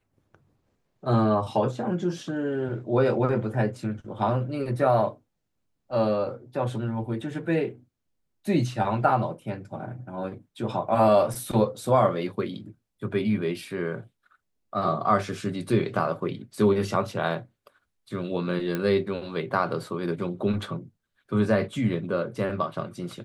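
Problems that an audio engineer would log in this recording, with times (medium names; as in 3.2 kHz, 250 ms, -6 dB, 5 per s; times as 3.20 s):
18.75 s: pop -15 dBFS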